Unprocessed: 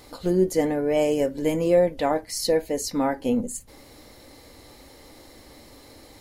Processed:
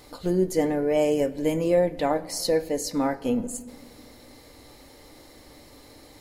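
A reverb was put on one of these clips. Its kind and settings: simulated room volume 3700 m³, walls mixed, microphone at 0.4 m; trim -1.5 dB

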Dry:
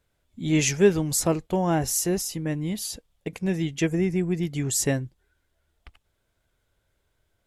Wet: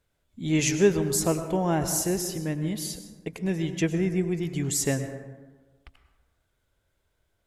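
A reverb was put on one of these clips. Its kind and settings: plate-style reverb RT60 1.3 s, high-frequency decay 0.4×, pre-delay 90 ms, DRR 8.5 dB; trim -2 dB

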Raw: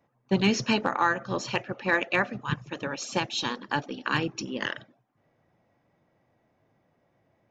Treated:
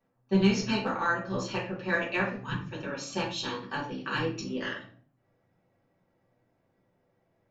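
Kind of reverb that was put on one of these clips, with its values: simulated room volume 34 m³, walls mixed, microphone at 1.1 m; trim -10.5 dB

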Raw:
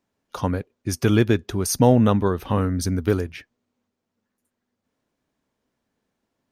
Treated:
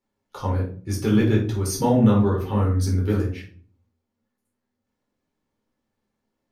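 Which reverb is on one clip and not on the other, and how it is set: simulated room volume 340 m³, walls furnished, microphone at 4.2 m; trim -10 dB

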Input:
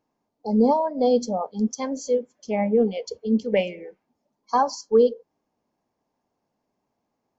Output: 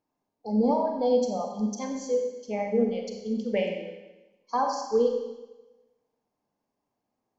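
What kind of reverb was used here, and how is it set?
Schroeder reverb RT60 1.1 s, combs from 30 ms, DRR 2.5 dB; trim -6.5 dB

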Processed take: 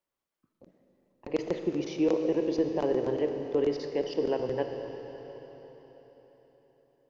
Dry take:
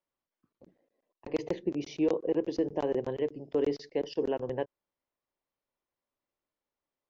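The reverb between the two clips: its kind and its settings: algorithmic reverb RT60 4.4 s, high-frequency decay 0.95×, pre-delay 0 ms, DRR 5 dB; trim +1.5 dB

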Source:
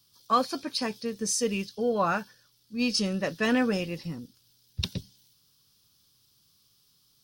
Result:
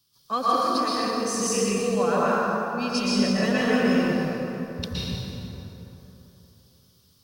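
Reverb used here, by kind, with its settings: plate-style reverb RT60 3.5 s, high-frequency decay 0.5×, pre-delay 105 ms, DRR -8.5 dB; trim -4 dB

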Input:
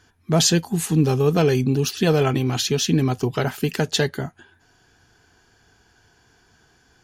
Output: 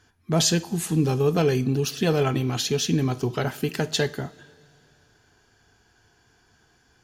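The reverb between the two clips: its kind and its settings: two-slope reverb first 0.43 s, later 2.9 s, from -18 dB, DRR 12 dB; trim -3.5 dB

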